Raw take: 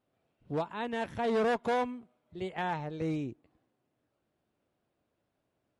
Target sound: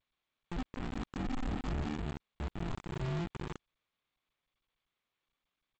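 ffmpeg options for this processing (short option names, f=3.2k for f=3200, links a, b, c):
-filter_complex "[0:a]aeval=exprs='val(0)+0.5*0.0112*sgn(val(0))':c=same,flanger=delay=9:depth=4.2:regen=31:speed=0.35:shape=triangular,highpass=f=240:w=0.5412,highpass=f=240:w=1.3066,lowshelf=f=330:g=5,asetrate=52444,aresample=44100,atempo=0.840896,asplit=2[a][b];[b]adelay=320.7,volume=-8dB,highshelf=f=4k:g=-7.22[c];[a][c]amix=inputs=2:normalize=0,aresample=16000,acrusher=samples=31:mix=1:aa=0.000001,aresample=44100,equalizer=f=1k:t=o:w=0.29:g=-7,asoftclip=type=tanh:threshold=-28.5dB,lowpass=f=1.3k:p=1,acrusher=bits=5:mix=0:aa=0.000001,volume=-2.5dB" -ar 16000 -c:a g722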